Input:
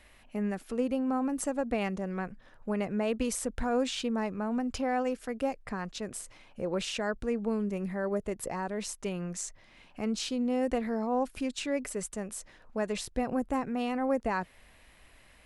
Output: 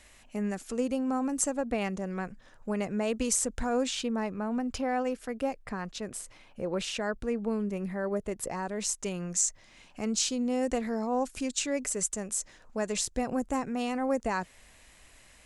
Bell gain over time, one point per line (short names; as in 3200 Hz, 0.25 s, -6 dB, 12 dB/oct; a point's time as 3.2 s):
bell 7000 Hz 0.94 oct
1.39 s +13 dB
1.62 s +3 dB
2.27 s +11 dB
3.5 s +11 dB
4.18 s +1.5 dB
8.11 s +1.5 dB
9.09 s +12.5 dB